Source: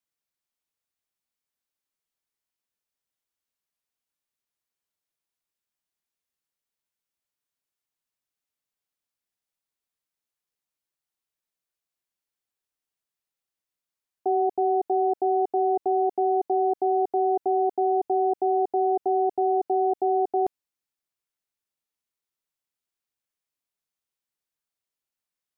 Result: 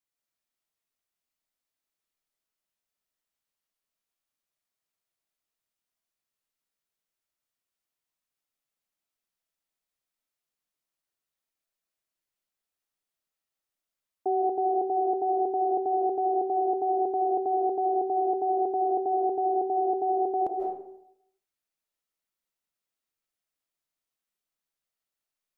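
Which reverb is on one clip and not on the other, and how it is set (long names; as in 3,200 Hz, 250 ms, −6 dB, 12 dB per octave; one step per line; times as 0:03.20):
comb and all-pass reverb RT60 0.76 s, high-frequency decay 0.6×, pre-delay 115 ms, DRR −1 dB
level −3 dB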